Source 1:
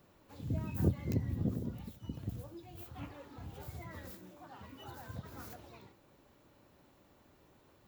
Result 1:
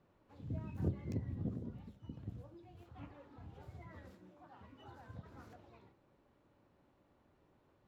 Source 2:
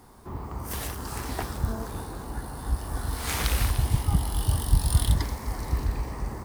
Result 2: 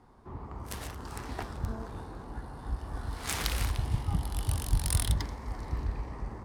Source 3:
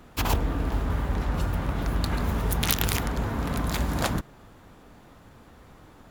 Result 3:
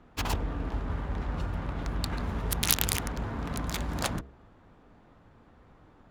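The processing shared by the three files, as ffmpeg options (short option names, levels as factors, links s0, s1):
-af "aemphasis=mode=production:type=75kf,adynamicsmooth=sensitivity=2:basefreq=2000,bandreject=f=67:t=h:w=4,bandreject=f=134:t=h:w=4,bandreject=f=201:t=h:w=4,bandreject=f=268:t=h:w=4,bandreject=f=335:t=h:w=4,bandreject=f=402:t=h:w=4,bandreject=f=469:t=h:w=4,bandreject=f=536:t=h:w=4,bandreject=f=603:t=h:w=4,bandreject=f=670:t=h:w=4,volume=0.531"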